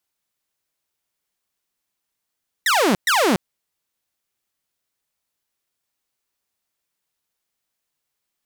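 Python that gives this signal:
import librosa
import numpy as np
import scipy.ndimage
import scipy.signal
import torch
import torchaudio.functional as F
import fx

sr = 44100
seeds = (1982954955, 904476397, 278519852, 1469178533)

y = fx.laser_zaps(sr, level_db=-12.0, start_hz=2000.0, end_hz=170.0, length_s=0.29, wave='saw', shots=2, gap_s=0.12)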